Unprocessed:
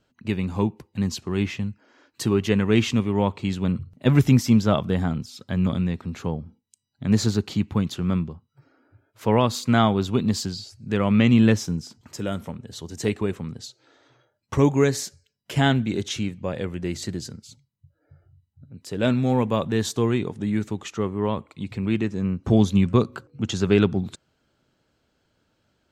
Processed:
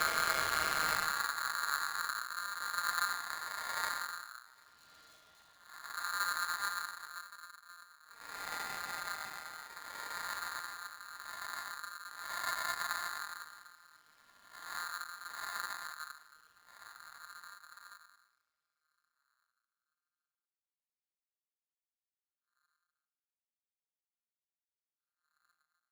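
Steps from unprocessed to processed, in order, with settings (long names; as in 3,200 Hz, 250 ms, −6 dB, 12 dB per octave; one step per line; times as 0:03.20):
channel vocoder with a chord as carrier major triad, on B2
low-pass filter 2,600 Hz 24 dB per octave
downward expander −43 dBFS
high-pass filter 170 Hz 24 dB per octave
extreme stretch with random phases 10×, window 0.05 s, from 0:15.62
half-wave rectification
ring modulator with a square carrier 1,400 Hz
level −7.5 dB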